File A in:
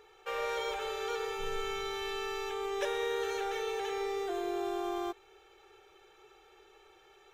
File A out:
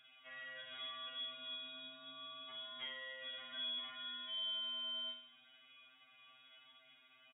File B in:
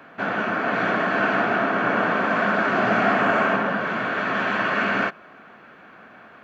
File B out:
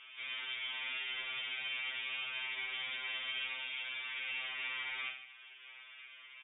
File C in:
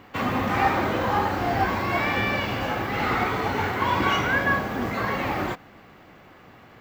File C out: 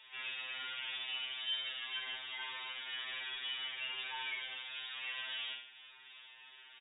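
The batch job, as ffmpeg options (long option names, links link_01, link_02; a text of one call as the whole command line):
ffmpeg -i in.wav -filter_complex "[0:a]highpass=43,equalizer=frequency=190:width=0.67:gain=-8.5,acompressor=threshold=-54dB:ratio=1.5,aresample=11025,asoftclip=type=hard:threshold=-35.5dB,aresample=44100,asplit=2[link_01][link_02];[link_02]adelay=47,volume=-5dB[link_03];[link_01][link_03]amix=inputs=2:normalize=0,aecho=1:1:76|152|228|304|380|456:0.335|0.171|0.0871|0.0444|0.0227|0.0116,lowpass=frequency=3200:width_type=q:width=0.5098,lowpass=frequency=3200:width_type=q:width=0.6013,lowpass=frequency=3200:width_type=q:width=0.9,lowpass=frequency=3200:width_type=q:width=2.563,afreqshift=-3800,afftfilt=real='re*2.45*eq(mod(b,6),0)':imag='im*2.45*eq(mod(b,6),0)':win_size=2048:overlap=0.75,volume=-2dB" out.wav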